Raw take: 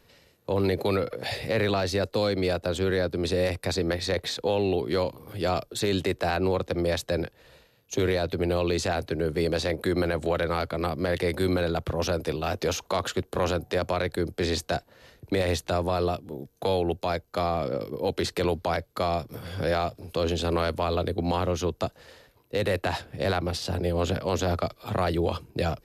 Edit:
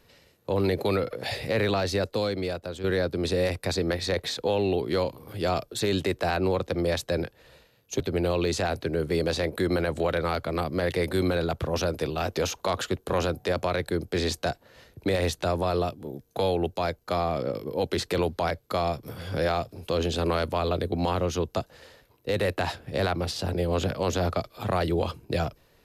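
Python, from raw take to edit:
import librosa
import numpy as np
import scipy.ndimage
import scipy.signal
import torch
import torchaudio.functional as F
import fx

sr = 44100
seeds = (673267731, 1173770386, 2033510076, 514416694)

y = fx.edit(x, sr, fx.fade_out_to(start_s=1.97, length_s=0.87, floor_db=-10.0),
    fx.cut(start_s=8.0, length_s=0.26), tone=tone)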